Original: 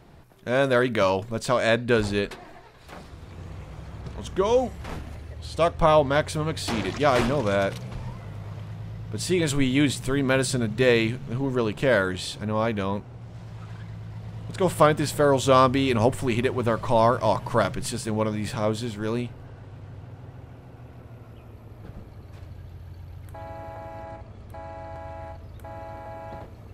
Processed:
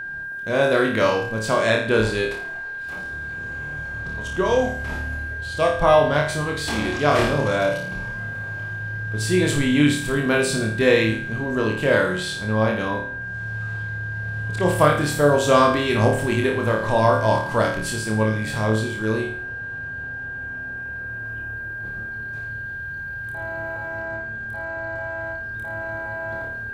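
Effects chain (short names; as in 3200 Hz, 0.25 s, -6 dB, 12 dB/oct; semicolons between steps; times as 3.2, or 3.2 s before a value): flutter echo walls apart 4.7 m, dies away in 0.51 s; whine 1600 Hz -29 dBFS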